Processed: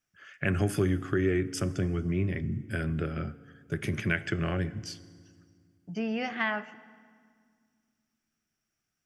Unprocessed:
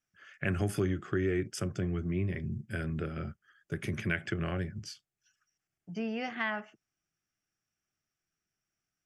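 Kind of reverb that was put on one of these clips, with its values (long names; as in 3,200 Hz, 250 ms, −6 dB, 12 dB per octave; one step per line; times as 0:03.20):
feedback delay network reverb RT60 1.9 s, low-frequency decay 1.5×, high-frequency decay 0.8×, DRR 15.5 dB
level +3.5 dB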